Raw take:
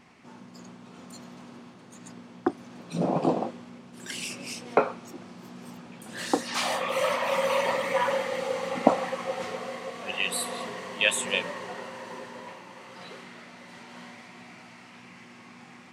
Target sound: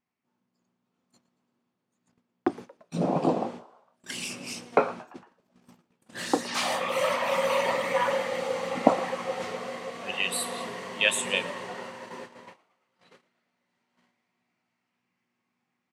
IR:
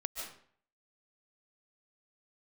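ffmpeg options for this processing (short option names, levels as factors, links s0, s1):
-filter_complex "[0:a]agate=range=0.0282:threshold=0.01:ratio=16:detection=peak,asplit=2[s0][s1];[s1]asplit=4[s2][s3][s4][s5];[s2]adelay=114,afreqshift=100,volume=0.0891[s6];[s3]adelay=228,afreqshift=200,volume=0.0473[s7];[s4]adelay=342,afreqshift=300,volume=0.0251[s8];[s5]adelay=456,afreqshift=400,volume=0.0133[s9];[s6][s7][s8][s9]amix=inputs=4:normalize=0[s10];[s0][s10]amix=inputs=2:normalize=0"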